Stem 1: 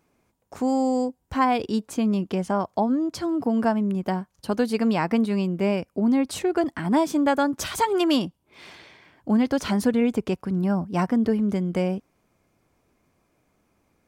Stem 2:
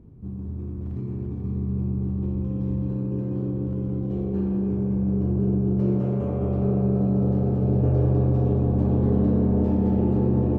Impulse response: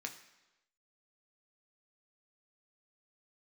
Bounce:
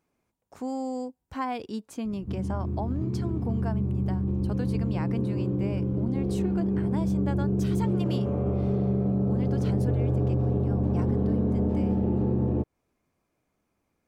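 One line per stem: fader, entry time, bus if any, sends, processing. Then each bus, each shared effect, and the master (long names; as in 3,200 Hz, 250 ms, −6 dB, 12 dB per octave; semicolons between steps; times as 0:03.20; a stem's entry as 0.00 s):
−9.0 dB, 0.00 s, no send, no processing
+3.0 dB, 2.05 s, no send, no processing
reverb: not used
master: downward compressor 2.5 to 1, threshold −25 dBFS, peak gain reduction 8 dB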